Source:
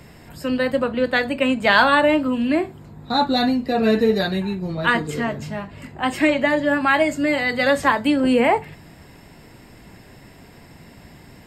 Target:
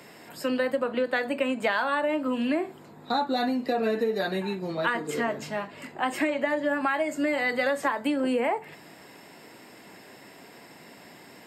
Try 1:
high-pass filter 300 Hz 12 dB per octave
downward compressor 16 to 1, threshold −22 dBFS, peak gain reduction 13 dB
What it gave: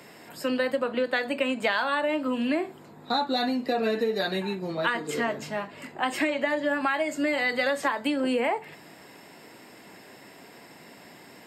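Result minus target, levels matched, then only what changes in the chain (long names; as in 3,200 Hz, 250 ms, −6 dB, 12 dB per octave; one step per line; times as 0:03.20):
4,000 Hz band +3.5 dB
add after high-pass filter: dynamic equaliser 4,000 Hz, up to −6 dB, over −37 dBFS, Q 0.82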